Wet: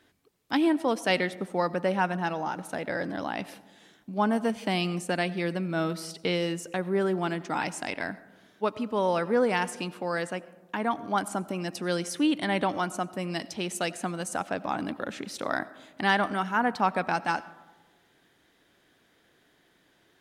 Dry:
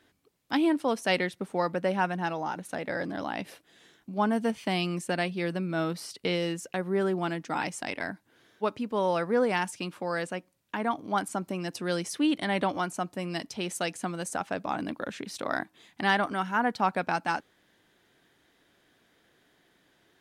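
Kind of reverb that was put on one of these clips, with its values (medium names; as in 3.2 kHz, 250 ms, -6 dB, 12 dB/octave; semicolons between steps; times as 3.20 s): algorithmic reverb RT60 1.3 s, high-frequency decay 0.3×, pre-delay 50 ms, DRR 17.5 dB; trim +1 dB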